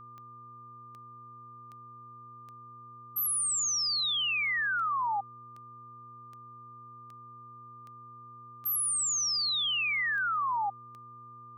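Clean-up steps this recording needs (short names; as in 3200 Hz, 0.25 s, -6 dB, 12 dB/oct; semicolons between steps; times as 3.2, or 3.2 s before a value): de-click; de-hum 119.1 Hz, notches 4; notch 1200 Hz, Q 30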